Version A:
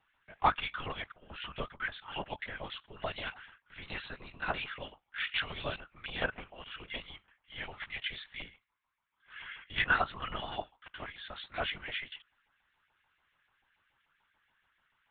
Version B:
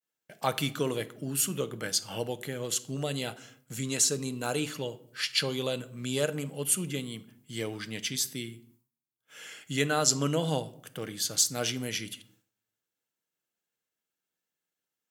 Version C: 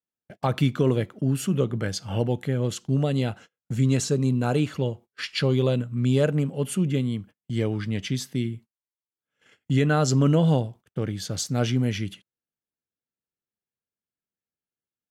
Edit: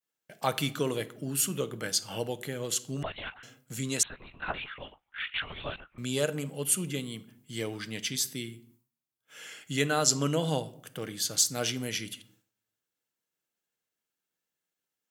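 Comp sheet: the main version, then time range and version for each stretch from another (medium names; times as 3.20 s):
B
3.03–3.43 s: from A
4.03–5.98 s: from A
not used: C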